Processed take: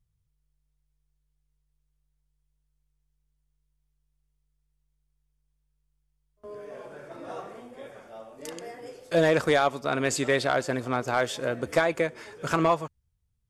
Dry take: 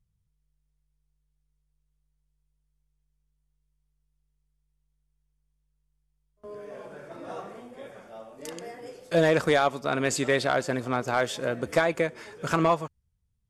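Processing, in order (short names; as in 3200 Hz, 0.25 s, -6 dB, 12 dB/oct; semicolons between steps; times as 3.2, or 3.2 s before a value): bell 190 Hz -8.5 dB 0.2 oct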